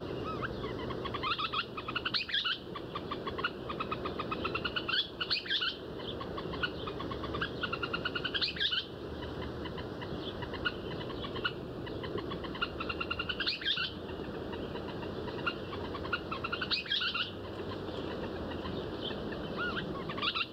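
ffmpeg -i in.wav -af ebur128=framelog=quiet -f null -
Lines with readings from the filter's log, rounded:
Integrated loudness:
  I:         -35.4 LUFS
  Threshold: -45.4 LUFS
Loudness range:
  LRA:         3.2 LU
  Threshold: -55.4 LUFS
  LRA low:   -37.4 LUFS
  LRA high:  -34.2 LUFS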